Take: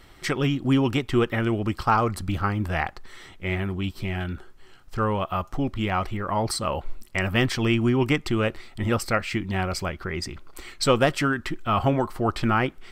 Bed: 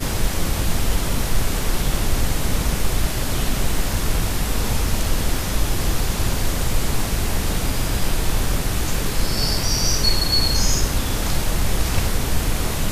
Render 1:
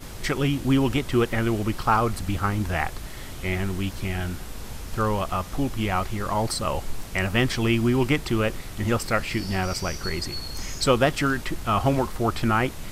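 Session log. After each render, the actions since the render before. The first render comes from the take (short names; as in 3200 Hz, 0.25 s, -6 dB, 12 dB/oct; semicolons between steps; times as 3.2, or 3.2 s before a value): add bed -15.5 dB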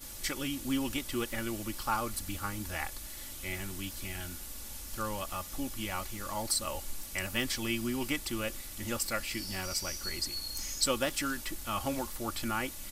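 pre-emphasis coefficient 0.8; comb 3.5 ms, depth 53%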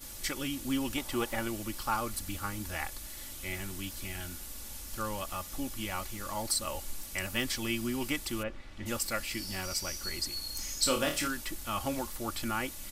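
0.97–1.48 bell 810 Hz +10 dB 1 oct; 8.42–8.85 LPF 1800 Hz -> 3100 Hz; 10.79–11.28 flutter echo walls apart 4.6 m, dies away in 0.31 s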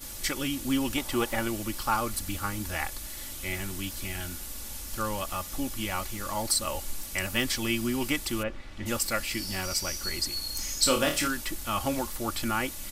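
gain +4.5 dB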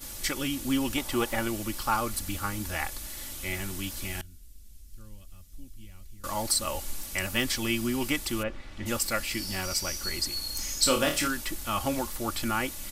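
4.21–6.24 passive tone stack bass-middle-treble 10-0-1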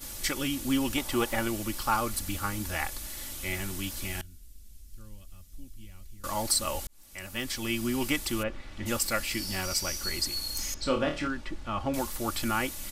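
6.87–7.99 fade in; 10.74–11.94 tape spacing loss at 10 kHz 26 dB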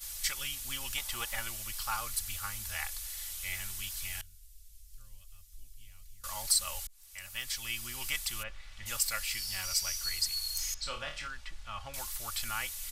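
passive tone stack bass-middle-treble 10-0-10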